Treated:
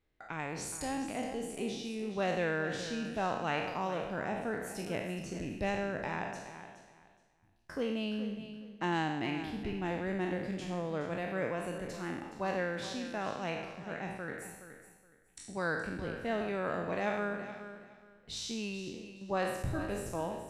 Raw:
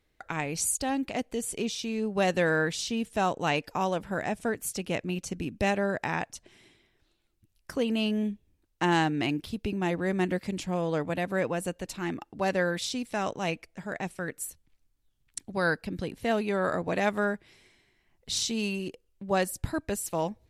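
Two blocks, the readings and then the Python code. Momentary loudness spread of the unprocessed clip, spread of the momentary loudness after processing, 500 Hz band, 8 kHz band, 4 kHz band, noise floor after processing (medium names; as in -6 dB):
9 LU, 11 LU, -6.0 dB, -11.5 dB, -8.0 dB, -64 dBFS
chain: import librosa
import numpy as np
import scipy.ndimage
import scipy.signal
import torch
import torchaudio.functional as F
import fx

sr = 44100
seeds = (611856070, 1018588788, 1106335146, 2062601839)

p1 = fx.spec_trails(x, sr, decay_s=0.95)
p2 = fx.lowpass(p1, sr, hz=2900.0, slope=6)
p3 = p2 + fx.echo_feedback(p2, sr, ms=420, feedback_pct=22, wet_db=-12.0, dry=0)
y = p3 * librosa.db_to_amplitude(-8.0)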